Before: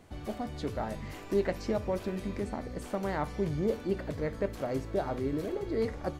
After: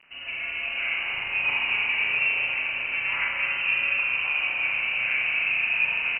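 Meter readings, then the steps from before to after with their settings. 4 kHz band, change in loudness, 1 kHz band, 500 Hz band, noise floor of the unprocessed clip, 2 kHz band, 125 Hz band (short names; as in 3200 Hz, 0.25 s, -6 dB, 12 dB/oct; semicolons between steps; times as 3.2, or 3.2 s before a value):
+19.5 dB, +10.5 dB, +1.0 dB, -15.5 dB, -44 dBFS, +24.5 dB, under -15 dB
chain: low shelf 160 Hz -7 dB; in parallel at -2.5 dB: limiter -29 dBFS, peak gain reduction 10.5 dB; on the sum: bit-crush 8-bit; on a send: echo 0.687 s -9 dB; on the sum: inverted band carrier 2900 Hz; spring tank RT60 3.9 s, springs 32/39 ms, chirp 75 ms, DRR -7.5 dB; gain -3 dB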